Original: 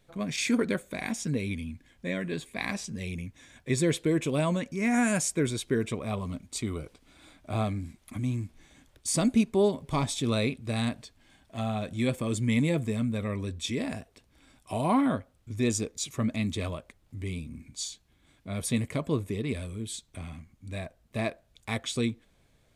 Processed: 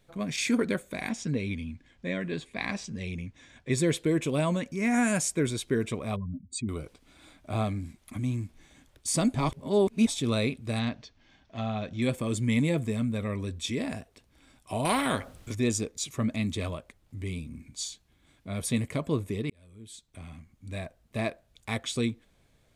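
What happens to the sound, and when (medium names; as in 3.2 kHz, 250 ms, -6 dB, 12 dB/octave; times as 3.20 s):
1.09–3.71 s: low-pass 6.2 kHz
6.16–6.69 s: spectral contrast enhancement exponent 2.5
9.35–10.07 s: reverse
10.79–12.02 s: Chebyshev low-pass 6 kHz, order 4
14.85–15.55 s: spectrum-flattening compressor 2:1
19.50–20.70 s: fade in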